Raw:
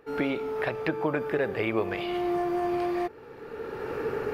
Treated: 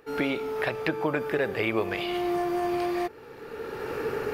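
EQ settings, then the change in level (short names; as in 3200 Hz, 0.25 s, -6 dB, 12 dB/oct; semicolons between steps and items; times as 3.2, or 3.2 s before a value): high shelf 2900 Hz +8.5 dB; 0.0 dB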